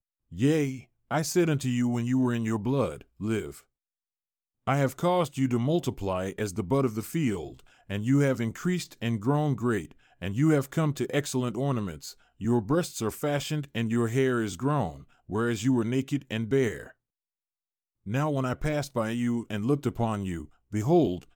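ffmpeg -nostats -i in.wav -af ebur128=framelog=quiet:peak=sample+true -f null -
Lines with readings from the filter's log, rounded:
Integrated loudness:
  I:         -28.2 LUFS
  Threshold: -38.5 LUFS
Loudness range:
  LRA:         2.6 LU
  Threshold: -49.0 LUFS
  LRA low:   -30.4 LUFS
  LRA high:  -27.9 LUFS
Sample peak:
  Peak:      -11.8 dBFS
True peak:
  Peak:      -11.8 dBFS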